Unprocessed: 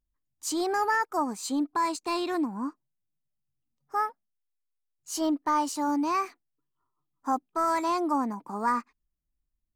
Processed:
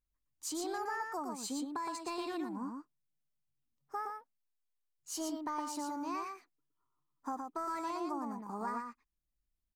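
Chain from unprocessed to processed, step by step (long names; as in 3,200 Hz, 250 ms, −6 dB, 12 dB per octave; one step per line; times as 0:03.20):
downward compressor, threshold −31 dBFS, peak gain reduction 8.5 dB
single-tap delay 116 ms −4.5 dB
level −5.5 dB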